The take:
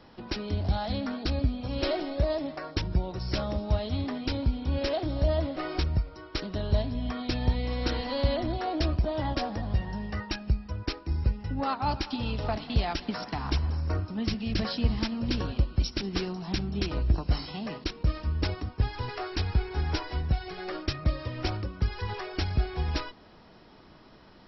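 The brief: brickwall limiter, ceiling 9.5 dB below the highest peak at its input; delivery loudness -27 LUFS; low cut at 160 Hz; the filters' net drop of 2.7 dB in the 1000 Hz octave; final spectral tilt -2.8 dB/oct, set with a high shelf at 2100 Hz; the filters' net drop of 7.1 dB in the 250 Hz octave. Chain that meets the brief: HPF 160 Hz; bell 250 Hz -8 dB; bell 1000 Hz -4.5 dB; high shelf 2100 Hz +6.5 dB; gain +9.5 dB; limiter -15.5 dBFS

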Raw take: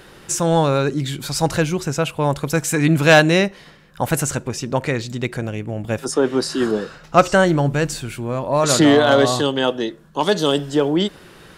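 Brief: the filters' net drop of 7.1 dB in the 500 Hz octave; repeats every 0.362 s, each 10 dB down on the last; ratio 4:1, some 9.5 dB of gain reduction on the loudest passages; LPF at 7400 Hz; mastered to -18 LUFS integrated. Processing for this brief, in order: LPF 7400 Hz; bell 500 Hz -9 dB; compressor 4:1, threshold -20 dBFS; feedback echo 0.362 s, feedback 32%, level -10 dB; gain +7 dB

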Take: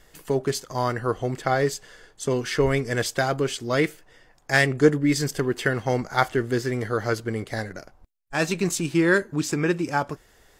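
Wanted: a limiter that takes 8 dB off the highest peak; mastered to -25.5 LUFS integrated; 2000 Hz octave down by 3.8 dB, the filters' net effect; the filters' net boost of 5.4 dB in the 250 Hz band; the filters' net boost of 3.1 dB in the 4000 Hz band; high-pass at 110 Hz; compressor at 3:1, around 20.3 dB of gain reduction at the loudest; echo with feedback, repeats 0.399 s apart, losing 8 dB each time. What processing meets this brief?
HPF 110 Hz; bell 250 Hz +7.5 dB; bell 2000 Hz -6 dB; bell 4000 Hz +5.5 dB; compressor 3:1, threshold -37 dBFS; limiter -26 dBFS; feedback echo 0.399 s, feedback 40%, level -8 dB; gain +12 dB

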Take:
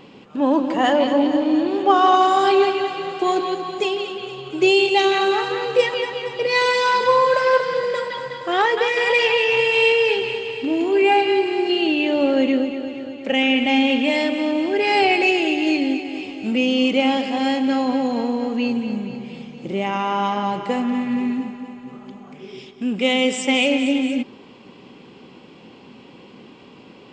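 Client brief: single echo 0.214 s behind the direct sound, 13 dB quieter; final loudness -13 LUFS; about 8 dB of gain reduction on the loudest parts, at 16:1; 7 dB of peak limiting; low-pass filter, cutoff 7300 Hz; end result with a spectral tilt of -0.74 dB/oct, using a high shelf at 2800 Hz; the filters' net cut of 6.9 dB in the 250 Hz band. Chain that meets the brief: LPF 7300 Hz; bell 250 Hz -8.5 dB; high shelf 2800 Hz +3 dB; compressor 16:1, threshold -19 dBFS; limiter -16.5 dBFS; echo 0.214 s -13 dB; gain +12.5 dB

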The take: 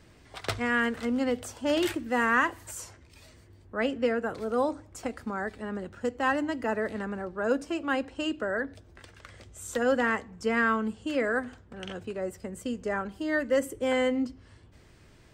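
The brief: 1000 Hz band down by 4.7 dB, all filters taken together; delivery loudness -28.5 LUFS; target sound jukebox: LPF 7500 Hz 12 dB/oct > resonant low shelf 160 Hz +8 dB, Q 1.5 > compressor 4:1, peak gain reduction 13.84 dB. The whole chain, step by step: LPF 7500 Hz 12 dB/oct; resonant low shelf 160 Hz +8 dB, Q 1.5; bell 1000 Hz -6 dB; compressor 4:1, threshold -38 dBFS; gain +13 dB

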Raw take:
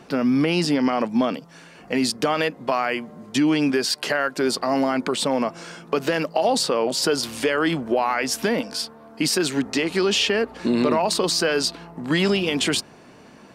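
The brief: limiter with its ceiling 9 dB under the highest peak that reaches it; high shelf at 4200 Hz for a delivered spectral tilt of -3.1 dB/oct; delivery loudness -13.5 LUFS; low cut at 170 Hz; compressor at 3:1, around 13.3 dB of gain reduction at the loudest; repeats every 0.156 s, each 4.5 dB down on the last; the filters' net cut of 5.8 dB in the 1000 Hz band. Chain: HPF 170 Hz; bell 1000 Hz -8.5 dB; high shelf 4200 Hz +5 dB; compressor 3:1, threshold -36 dBFS; limiter -27 dBFS; feedback echo 0.156 s, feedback 60%, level -4.5 dB; gain +21.5 dB

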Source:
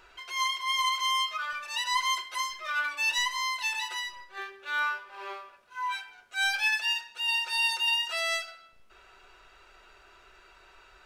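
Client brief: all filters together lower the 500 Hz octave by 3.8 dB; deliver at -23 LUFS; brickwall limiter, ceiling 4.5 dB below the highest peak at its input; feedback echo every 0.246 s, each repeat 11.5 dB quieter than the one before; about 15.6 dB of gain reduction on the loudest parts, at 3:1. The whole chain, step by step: bell 500 Hz -6 dB; compressor 3:1, threshold -46 dBFS; limiter -37 dBFS; feedback echo 0.246 s, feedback 27%, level -11.5 dB; gain +20.5 dB

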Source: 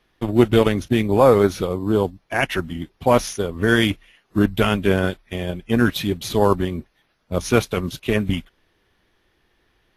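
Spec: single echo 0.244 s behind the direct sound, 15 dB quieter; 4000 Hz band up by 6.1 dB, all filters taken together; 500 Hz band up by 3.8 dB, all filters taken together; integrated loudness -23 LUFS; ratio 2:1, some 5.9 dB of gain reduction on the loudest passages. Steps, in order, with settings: bell 500 Hz +4.5 dB; bell 4000 Hz +8 dB; compressor 2:1, threshold -16 dBFS; echo 0.244 s -15 dB; gain -2 dB

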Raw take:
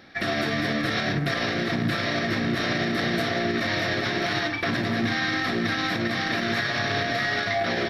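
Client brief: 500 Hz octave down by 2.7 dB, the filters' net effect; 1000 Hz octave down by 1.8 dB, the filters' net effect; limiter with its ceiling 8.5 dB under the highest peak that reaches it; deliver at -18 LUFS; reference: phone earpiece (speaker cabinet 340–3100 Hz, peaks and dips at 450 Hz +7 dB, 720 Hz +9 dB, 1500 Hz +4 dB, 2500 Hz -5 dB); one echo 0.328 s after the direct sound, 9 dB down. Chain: bell 500 Hz -8.5 dB; bell 1000 Hz -8.5 dB; limiter -24 dBFS; speaker cabinet 340–3100 Hz, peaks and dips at 450 Hz +7 dB, 720 Hz +9 dB, 1500 Hz +4 dB, 2500 Hz -5 dB; echo 0.328 s -9 dB; gain +15 dB

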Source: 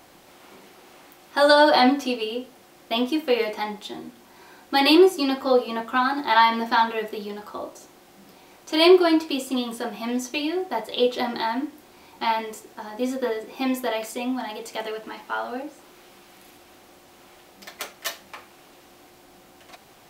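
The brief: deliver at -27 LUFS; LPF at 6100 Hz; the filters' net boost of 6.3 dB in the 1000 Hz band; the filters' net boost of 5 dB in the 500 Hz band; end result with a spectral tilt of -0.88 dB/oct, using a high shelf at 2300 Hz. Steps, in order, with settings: LPF 6100 Hz; bell 500 Hz +5 dB; bell 1000 Hz +6.5 dB; high shelf 2300 Hz -3.5 dB; gain -8.5 dB

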